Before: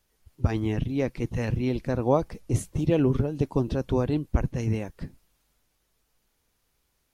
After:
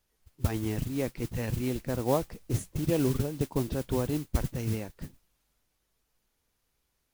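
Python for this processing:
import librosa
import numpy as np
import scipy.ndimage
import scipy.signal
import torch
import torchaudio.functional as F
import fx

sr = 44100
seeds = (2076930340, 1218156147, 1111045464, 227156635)

y = fx.mod_noise(x, sr, seeds[0], snr_db=16)
y = F.gain(torch.from_numpy(y), -4.5).numpy()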